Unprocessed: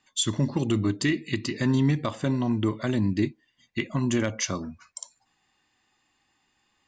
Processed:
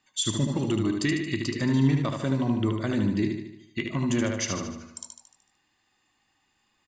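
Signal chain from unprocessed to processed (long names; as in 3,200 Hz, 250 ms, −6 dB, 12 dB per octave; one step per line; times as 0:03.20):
repeating echo 75 ms, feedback 53%, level −5 dB
level −2 dB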